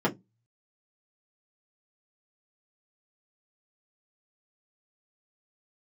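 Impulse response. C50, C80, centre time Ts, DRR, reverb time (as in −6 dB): 20.5 dB, 28.5 dB, 18 ms, −5.0 dB, 0.15 s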